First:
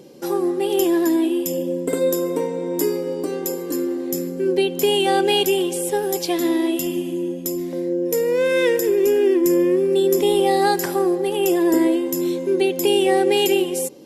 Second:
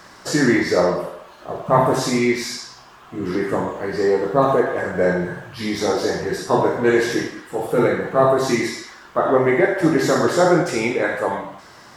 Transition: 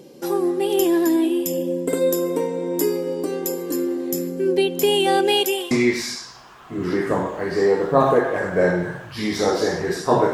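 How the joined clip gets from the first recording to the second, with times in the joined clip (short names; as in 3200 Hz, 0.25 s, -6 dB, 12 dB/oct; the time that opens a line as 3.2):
first
5.17–5.71 HPF 150 Hz -> 840 Hz
5.71 switch to second from 2.13 s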